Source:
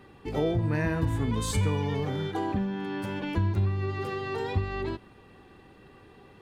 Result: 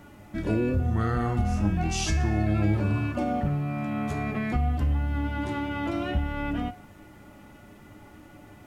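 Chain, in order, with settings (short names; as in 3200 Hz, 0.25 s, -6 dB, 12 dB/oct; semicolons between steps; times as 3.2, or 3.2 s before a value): in parallel at +0.5 dB: limiter -22 dBFS, peak gain reduction 7.5 dB; on the sum: resonator 140 Hz, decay 0.25 s, harmonics all, mix 70%; requantised 12-bit, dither triangular; speed mistake 45 rpm record played at 33 rpm; gain +4.5 dB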